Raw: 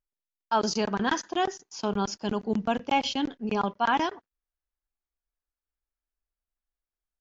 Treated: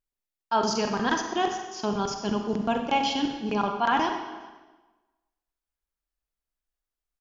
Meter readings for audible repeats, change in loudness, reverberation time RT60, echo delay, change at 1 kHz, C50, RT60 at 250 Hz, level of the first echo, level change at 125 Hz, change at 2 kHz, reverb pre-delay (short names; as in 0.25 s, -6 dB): 1, +1.0 dB, 1.3 s, 0.409 s, +1.5 dB, 5.5 dB, 1.3 s, -24.0 dB, +0.5 dB, +1.5 dB, 35 ms